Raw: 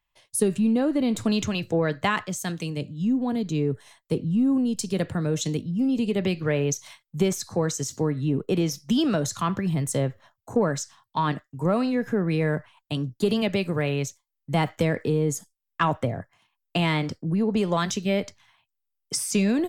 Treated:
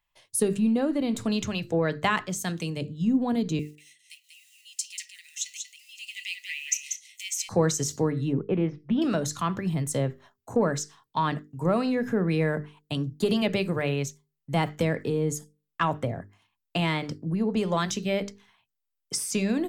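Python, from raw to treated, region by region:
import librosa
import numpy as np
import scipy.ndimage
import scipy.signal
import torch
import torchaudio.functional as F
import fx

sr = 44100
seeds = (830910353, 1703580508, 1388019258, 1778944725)

y = fx.chain(x, sr, fx.block_float(bits=7),
    fx.cheby_ripple_highpass(hz=1900.0, ripple_db=6),
    fx.echo_single(ms=189, db=-6.0), at=(3.59, 7.49))
y = fx.chain(y, sr, fx.lowpass(hz=2300.0, slope=24),
    fx.doppler_dist(depth_ms=0.11), at=(8.33, 9.02))
y = fx.hum_notches(y, sr, base_hz=50, count=9)
y = fx.rider(y, sr, range_db=10, speed_s=2.0)
y = y * 10.0 ** (-1.0 / 20.0)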